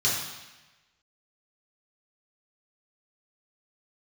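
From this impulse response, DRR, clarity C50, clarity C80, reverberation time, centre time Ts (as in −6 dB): −7.0 dB, 1.5 dB, 4.0 dB, 1.1 s, 63 ms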